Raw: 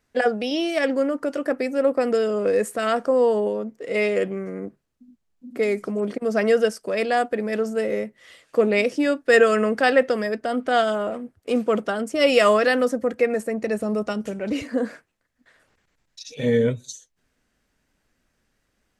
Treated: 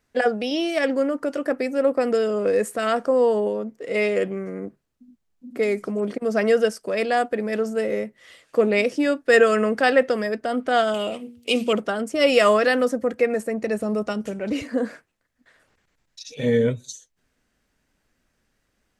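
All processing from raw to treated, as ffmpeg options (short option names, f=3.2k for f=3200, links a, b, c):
-filter_complex "[0:a]asettb=1/sr,asplit=3[a][b][c];[a]atrim=end=10.944[d];[b]atrim=start=10.94:end=11.73,asetpts=PTS-STARTPTS,afade=t=in:d=0.004:c=qsin,afade=t=out:st=0.786:d=0.004:c=qsin,highpass=57,highshelf=f=2.1k:t=q:w=3:g=9,bandreject=f=119.9:t=h:w=4,bandreject=f=239.8:t=h:w=4,bandreject=f=359.7:t=h:w=4,bandreject=f=479.6:t=h:w=4[e];[c]atrim=start=11.726[f];[d][e]acrossfade=d=0.004:c1=hsin:c2=qsin[g];[g][f]acrossfade=d=0.004:c1=qsin:c2=hsin"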